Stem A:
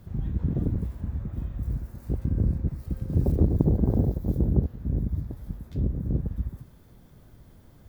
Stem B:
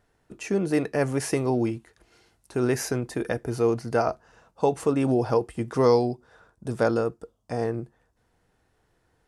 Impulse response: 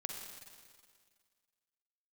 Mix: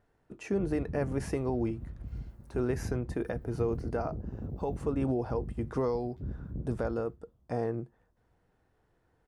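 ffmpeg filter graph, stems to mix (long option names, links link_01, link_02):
-filter_complex "[0:a]agate=range=-33dB:threshold=-40dB:ratio=3:detection=peak,alimiter=limit=-17.5dB:level=0:latency=1:release=248,adelay=450,volume=-10.5dB,asplit=2[link_01][link_02];[link_02]volume=-18.5dB[link_03];[1:a]alimiter=limit=-18.5dB:level=0:latency=1:release=481,volume=-2.5dB[link_04];[link_03]aecho=0:1:288|576|864|1152:1|0.29|0.0841|0.0244[link_05];[link_01][link_04][link_05]amix=inputs=3:normalize=0,highshelf=frequency=2700:gain=-11"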